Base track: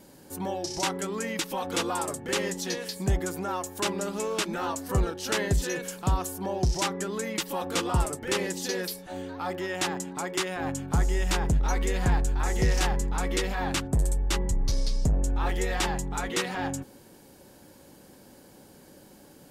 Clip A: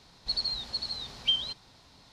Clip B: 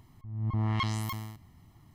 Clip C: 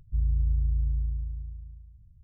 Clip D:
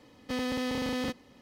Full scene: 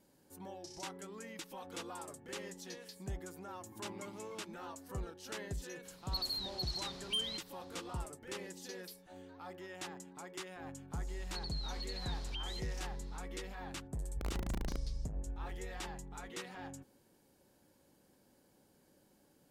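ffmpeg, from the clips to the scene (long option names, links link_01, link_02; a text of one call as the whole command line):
ffmpeg -i bed.wav -i cue0.wav -i cue1.wav -i cue2.wav -filter_complex "[1:a]asplit=2[link_01][link_02];[0:a]volume=-16.5dB[link_03];[2:a]asplit=3[link_04][link_05][link_06];[link_04]bandpass=frequency=300:width_type=q:width=8,volume=0dB[link_07];[link_05]bandpass=frequency=870:width_type=q:width=8,volume=-6dB[link_08];[link_06]bandpass=frequency=2240:width_type=q:width=8,volume=-9dB[link_09];[link_07][link_08][link_09]amix=inputs=3:normalize=0[link_10];[link_01]asoftclip=type=tanh:threshold=-25dB[link_11];[link_02]acompressor=threshold=-37dB:ratio=6:attack=3.2:release=140:knee=1:detection=peak[link_12];[3:a]aeval=exprs='(mod(9.44*val(0)+1,2)-1)/9.44':channel_layout=same[link_13];[link_10]atrim=end=1.94,asetpts=PTS-STARTPTS,volume=-6.5dB,afade=type=in:duration=0.004:curve=hsin,afade=type=out:start_time=1.936:duration=0.004:curve=hsin,adelay=3220[link_14];[link_11]atrim=end=2.12,asetpts=PTS-STARTPTS,volume=-5.5dB,afade=type=in:duration=0.004:curve=hsin,afade=type=out:start_time=2.116:duration=0.004:curve=hsin,adelay=257985S[link_15];[link_12]atrim=end=2.12,asetpts=PTS-STARTPTS,volume=-6dB,afade=type=in:duration=0.004:curve=hsin,afade=type=out:start_time=2.116:duration=0.004:curve=hsin,adelay=11070[link_16];[link_13]atrim=end=2.23,asetpts=PTS-STARTPTS,volume=-15dB,afade=type=in:duration=0.004:curve=hsin,afade=type=out:start_time=2.226:duration=0.004:curve=hsin,adelay=14030[link_17];[link_03][link_14][link_15][link_16][link_17]amix=inputs=5:normalize=0" out.wav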